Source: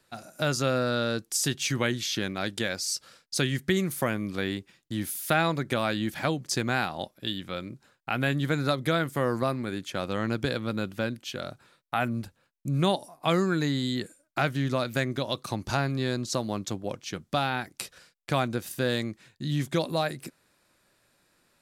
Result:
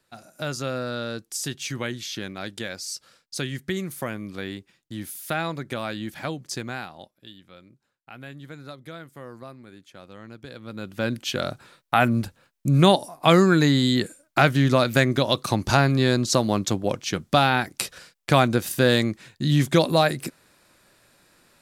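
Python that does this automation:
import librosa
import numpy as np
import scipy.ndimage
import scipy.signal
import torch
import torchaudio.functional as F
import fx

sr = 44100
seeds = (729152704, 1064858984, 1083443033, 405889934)

y = fx.gain(x, sr, db=fx.line((6.53, -3.0), (7.33, -14.0), (10.42, -14.0), (10.87, -2.5), (11.17, 8.5)))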